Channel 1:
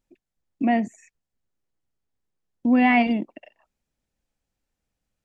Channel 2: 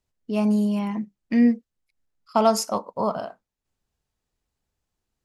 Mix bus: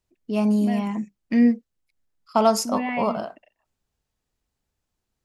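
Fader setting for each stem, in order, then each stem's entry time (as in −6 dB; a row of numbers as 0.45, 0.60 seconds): −10.0, +0.5 decibels; 0.00, 0.00 seconds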